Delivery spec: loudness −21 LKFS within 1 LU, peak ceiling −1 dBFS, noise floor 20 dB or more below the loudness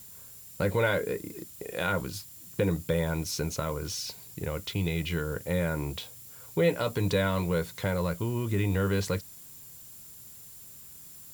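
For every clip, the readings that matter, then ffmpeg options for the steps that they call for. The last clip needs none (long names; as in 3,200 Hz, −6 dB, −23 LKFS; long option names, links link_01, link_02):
interfering tone 7,200 Hz; level of the tone −57 dBFS; background noise floor −48 dBFS; target noise floor −51 dBFS; integrated loudness −30.5 LKFS; sample peak −13.5 dBFS; target loudness −21.0 LKFS
→ -af "bandreject=frequency=7200:width=30"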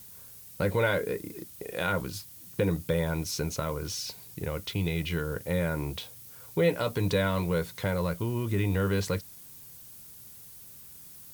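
interfering tone none found; background noise floor −49 dBFS; target noise floor −51 dBFS
→ -af "afftdn=noise_reduction=6:noise_floor=-49"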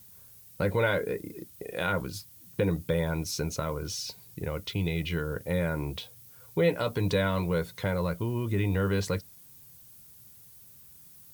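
background noise floor −53 dBFS; integrated loudness −30.5 LKFS; sample peak −13.5 dBFS; target loudness −21.0 LKFS
→ -af "volume=9.5dB"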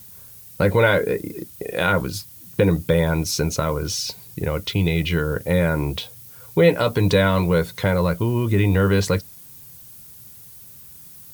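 integrated loudness −21.0 LKFS; sample peak −4.0 dBFS; background noise floor −43 dBFS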